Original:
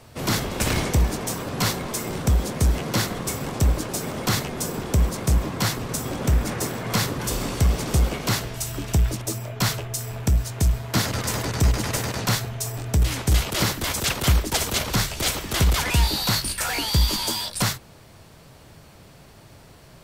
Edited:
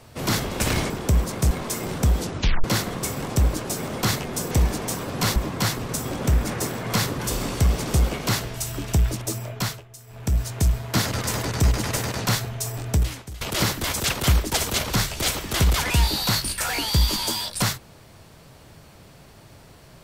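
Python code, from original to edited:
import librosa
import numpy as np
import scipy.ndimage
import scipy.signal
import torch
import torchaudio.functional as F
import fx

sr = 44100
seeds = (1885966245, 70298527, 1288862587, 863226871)

y = fx.edit(x, sr, fx.swap(start_s=0.9, length_s=0.85, other_s=4.75, other_length_s=0.61),
    fx.tape_stop(start_s=2.43, length_s=0.45),
    fx.fade_down_up(start_s=9.49, length_s=0.93, db=-15.5, fade_s=0.35),
    fx.fade_out_to(start_s=12.96, length_s=0.45, curve='qua', floor_db=-21.0), tone=tone)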